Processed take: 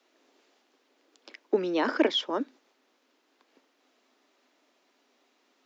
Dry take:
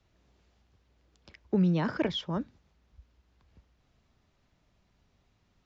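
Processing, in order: Chebyshev high-pass 260 Hz, order 5; gain +7 dB

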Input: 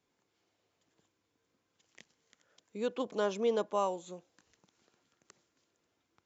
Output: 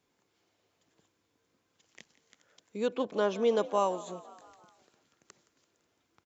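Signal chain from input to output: 2.88–3.41 air absorption 84 m; frequency-shifting echo 0.169 s, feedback 60%, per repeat +53 Hz, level -18 dB; gain +3.5 dB

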